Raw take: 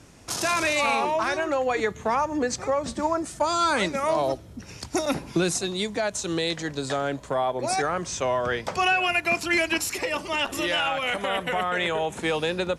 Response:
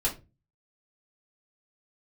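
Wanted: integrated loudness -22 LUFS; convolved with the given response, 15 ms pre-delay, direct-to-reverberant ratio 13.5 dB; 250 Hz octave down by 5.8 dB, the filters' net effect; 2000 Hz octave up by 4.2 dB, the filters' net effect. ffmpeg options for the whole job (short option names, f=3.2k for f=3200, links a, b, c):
-filter_complex "[0:a]equalizer=f=250:t=o:g=-9,equalizer=f=2k:t=o:g=5.5,asplit=2[a][b];[1:a]atrim=start_sample=2205,adelay=15[c];[b][c]afir=irnorm=-1:irlink=0,volume=-21dB[d];[a][d]amix=inputs=2:normalize=0,volume=1.5dB"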